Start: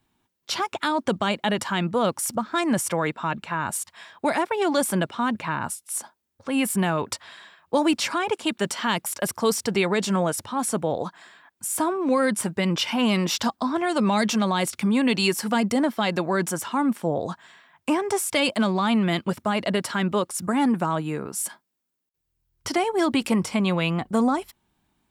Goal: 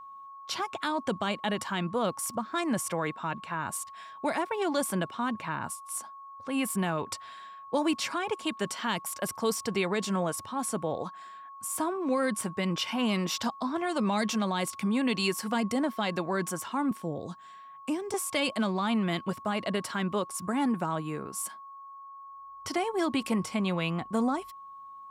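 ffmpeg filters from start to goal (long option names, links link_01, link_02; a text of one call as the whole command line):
ffmpeg -i in.wav -filter_complex "[0:a]aeval=exprs='val(0)+0.0141*sin(2*PI*1100*n/s)':channel_layout=same,asettb=1/sr,asplit=3[link_01][link_02][link_03];[link_01]atrim=end=16.914[link_04];[link_02]atrim=start=16.91:end=18.14,asetpts=PTS-STARTPTS,afade=type=in:duration=0.004:curve=qsin,afade=type=out:start_time=1.226:duration=0.004:curve=qsin,acrossover=split=470|3000[link_05][link_06][link_07];[link_06]acompressor=threshold=-41dB:ratio=3[link_08];[link_05][link_08][link_07]amix=inputs=3:normalize=0[link_09];[link_03]atrim=start=18.136[link_10];[link_04][link_09]acrossfade=duration=0.004:curve1=hsin:curve2=qsin[link_11];[link_11][link_10]acrossfade=duration=0.004:curve1=qsin:curve2=hsin,volume=-6.5dB" out.wav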